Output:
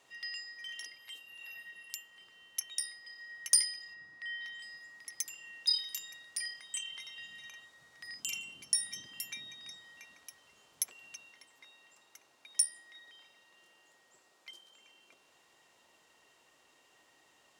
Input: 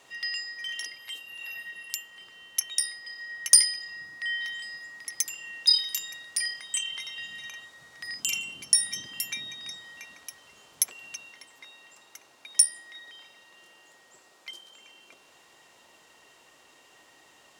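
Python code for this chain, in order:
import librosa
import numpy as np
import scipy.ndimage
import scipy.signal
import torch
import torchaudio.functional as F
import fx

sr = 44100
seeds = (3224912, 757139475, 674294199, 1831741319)

y = fx.high_shelf(x, sr, hz=fx.line((3.93, 4800.0), (4.59, 8800.0)), db=-11.5, at=(3.93, 4.59), fade=0.02)
y = y * 10.0 ** (-9.0 / 20.0)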